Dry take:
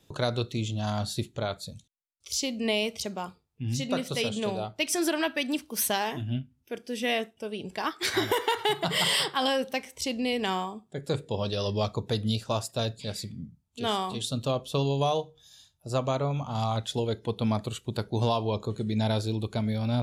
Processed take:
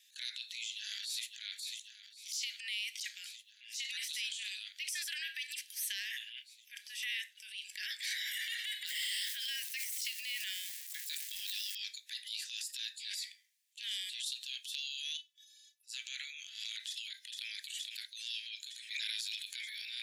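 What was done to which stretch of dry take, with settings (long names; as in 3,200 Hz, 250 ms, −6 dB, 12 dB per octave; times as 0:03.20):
0:00.54–0:01.48: delay throw 540 ms, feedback 80%, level −16.5 dB
0:08.86–0:11.75: spike at every zero crossing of −31.5 dBFS
0:15.17–0:15.87: stiff-string resonator 150 Hz, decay 0.21 s, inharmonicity 0.008
0:16.80–0:17.54: delay throw 460 ms, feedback 80%, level −14 dB
0:18.90–0:19.55: ceiling on every frequency bin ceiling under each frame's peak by 18 dB
whole clip: Butterworth high-pass 1,700 Hz 96 dB per octave; downward compressor, threshold −38 dBFS; transient designer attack −7 dB, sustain +9 dB; level +2.5 dB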